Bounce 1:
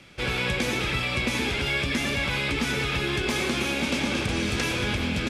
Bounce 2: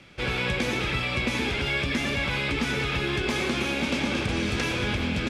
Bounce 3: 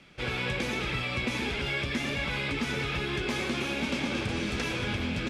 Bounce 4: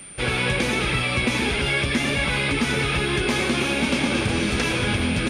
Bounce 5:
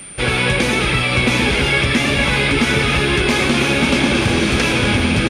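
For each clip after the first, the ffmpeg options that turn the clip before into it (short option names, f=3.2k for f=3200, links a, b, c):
-af "highshelf=f=7.3k:g=-9"
-af "flanger=delay=4.5:depth=4.7:regen=-56:speed=1.3:shape=sinusoidal"
-af "aeval=exprs='val(0)+0.00398*sin(2*PI*9100*n/s)':c=same,volume=8.5dB"
-af "aecho=1:1:928:0.422,volume=6dB"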